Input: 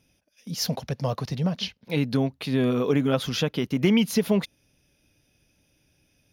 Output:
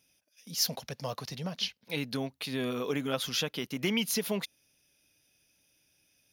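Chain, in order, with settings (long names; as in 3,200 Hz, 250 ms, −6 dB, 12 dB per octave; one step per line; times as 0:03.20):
spectral tilt +2.5 dB per octave
level −6 dB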